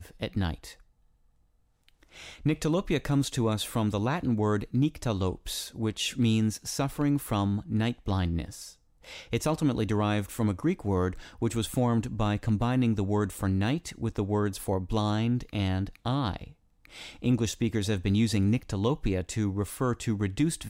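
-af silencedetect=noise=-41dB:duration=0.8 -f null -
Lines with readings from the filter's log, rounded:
silence_start: 0.72
silence_end: 1.89 | silence_duration: 1.16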